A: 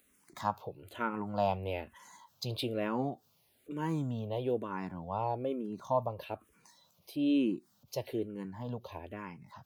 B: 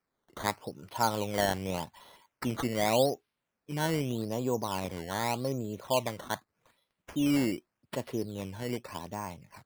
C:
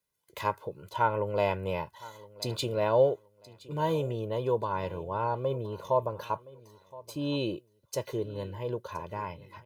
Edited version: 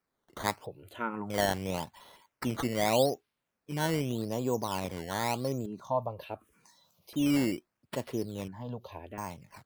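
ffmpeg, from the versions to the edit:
-filter_complex "[0:a]asplit=3[s0][s1][s2];[1:a]asplit=4[s3][s4][s5][s6];[s3]atrim=end=0.662[s7];[s0]atrim=start=0.658:end=1.302[s8];[s4]atrim=start=1.298:end=5.662[s9];[s1]atrim=start=5.658:end=7.132[s10];[s5]atrim=start=7.128:end=8.482[s11];[s2]atrim=start=8.478:end=9.182[s12];[s6]atrim=start=9.178[s13];[s7][s8]acrossfade=d=0.004:c1=hsin:c2=hsin[s14];[s14][s9]acrossfade=d=0.004:c1=hsin:c2=hsin[s15];[s15][s10]acrossfade=d=0.004:c1=hsin:c2=hsin[s16];[s16][s11]acrossfade=d=0.004:c1=hsin:c2=hsin[s17];[s17][s12]acrossfade=d=0.004:c1=hsin:c2=hsin[s18];[s18][s13]acrossfade=d=0.004:c1=hsin:c2=hsin"

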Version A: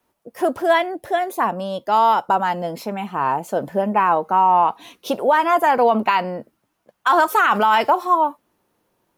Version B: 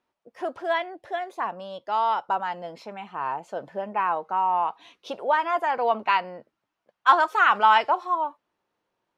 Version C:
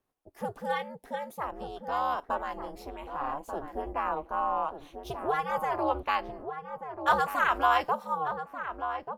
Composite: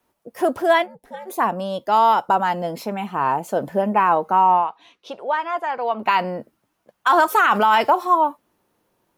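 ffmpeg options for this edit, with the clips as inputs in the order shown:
-filter_complex "[0:a]asplit=3[s0][s1][s2];[s0]atrim=end=0.88,asetpts=PTS-STARTPTS[s3];[2:a]atrim=start=0.82:end=1.31,asetpts=PTS-STARTPTS[s4];[s1]atrim=start=1.25:end=4.68,asetpts=PTS-STARTPTS[s5];[1:a]atrim=start=4.52:end=6.12,asetpts=PTS-STARTPTS[s6];[s2]atrim=start=5.96,asetpts=PTS-STARTPTS[s7];[s3][s4]acrossfade=d=0.06:c1=tri:c2=tri[s8];[s8][s5]acrossfade=d=0.06:c1=tri:c2=tri[s9];[s9][s6]acrossfade=d=0.16:c1=tri:c2=tri[s10];[s10][s7]acrossfade=d=0.16:c1=tri:c2=tri"

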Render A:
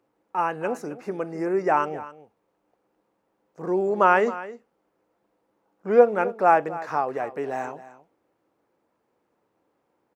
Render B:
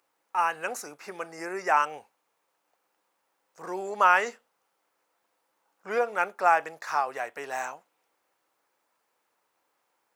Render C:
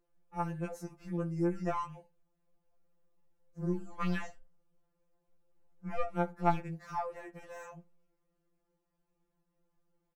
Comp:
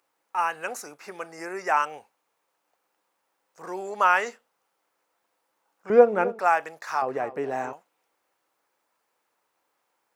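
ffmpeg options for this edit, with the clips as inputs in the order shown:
-filter_complex "[0:a]asplit=2[s0][s1];[1:a]asplit=3[s2][s3][s4];[s2]atrim=end=5.902[s5];[s0]atrim=start=5.898:end=6.392[s6];[s3]atrim=start=6.388:end=7.022[s7];[s1]atrim=start=7.018:end=7.732[s8];[s4]atrim=start=7.728[s9];[s5][s6]acrossfade=d=0.004:c1=hsin:c2=hsin[s10];[s10][s7]acrossfade=d=0.004:c1=hsin:c2=hsin[s11];[s11][s8]acrossfade=d=0.004:c1=hsin:c2=hsin[s12];[s12][s9]acrossfade=d=0.004:c1=hsin:c2=hsin"

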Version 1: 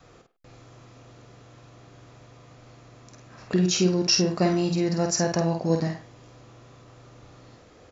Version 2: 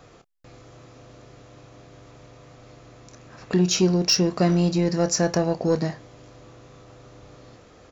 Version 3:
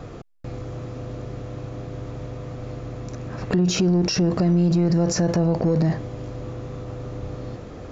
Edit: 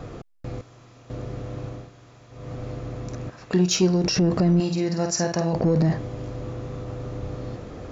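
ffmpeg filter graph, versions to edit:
-filter_complex "[0:a]asplit=3[s0][s1][s2];[2:a]asplit=5[s3][s4][s5][s6][s7];[s3]atrim=end=0.612[s8];[s0]atrim=start=0.608:end=1.102[s9];[s4]atrim=start=1.098:end=1.92[s10];[s1]atrim=start=1.68:end=2.53[s11];[s5]atrim=start=2.29:end=3.302[s12];[1:a]atrim=start=3.298:end=4.042[s13];[s6]atrim=start=4.038:end=4.602[s14];[s2]atrim=start=4.598:end=5.532[s15];[s7]atrim=start=5.528[s16];[s8][s9]acrossfade=d=0.004:c1=hsin:c2=hsin[s17];[s17][s10]acrossfade=d=0.004:c1=hsin:c2=hsin[s18];[s18][s11]acrossfade=d=0.24:c1=tri:c2=tri[s19];[s19][s12]acrossfade=d=0.24:c1=tri:c2=tri[s20];[s20][s13]acrossfade=d=0.004:c1=hsin:c2=hsin[s21];[s21][s14]acrossfade=d=0.004:c1=hsin:c2=hsin[s22];[s22][s15]acrossfade=d=0.004:c1=hsin:c2=hsin[s23];[s23][s16]acrossfade=d=0.004:c1=hsin:c2=hsin"

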